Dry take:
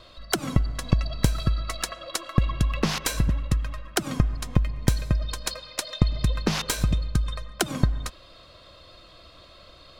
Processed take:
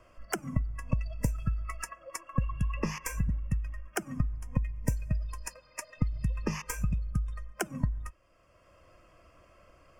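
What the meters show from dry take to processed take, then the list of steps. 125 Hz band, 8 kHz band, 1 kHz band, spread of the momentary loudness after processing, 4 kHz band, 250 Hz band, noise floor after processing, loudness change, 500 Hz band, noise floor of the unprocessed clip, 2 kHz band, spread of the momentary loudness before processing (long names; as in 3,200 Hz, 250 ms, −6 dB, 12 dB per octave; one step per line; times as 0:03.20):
−7.0 dB, −9.5 dB, −7.5 dB, 8 LU, −18.5 dB, −7.5 dB, −62 dBFS, −7.5 dB, −9.0 dB, −50 dBFS, −7.5 dB, 6 LU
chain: Butterworth band-reject 3,900 Hz, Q 1.4
noise reduction from a noise print of the clip's start 13 dB
multiband upward and downward compressor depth 40%
level −6.5 dB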